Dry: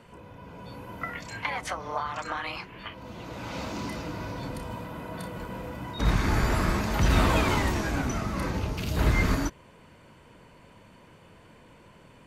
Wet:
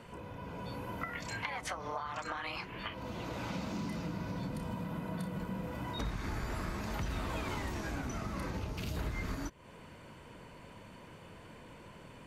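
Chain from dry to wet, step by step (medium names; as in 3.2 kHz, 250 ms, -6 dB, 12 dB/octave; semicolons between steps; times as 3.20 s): 3.49–5.68 s: peaking EQ 180 Hz +10 dB 0.77 oct; compression 5:1, threshold -37 dBFS, peak gain reduction 17.5 dB; trim +1 dB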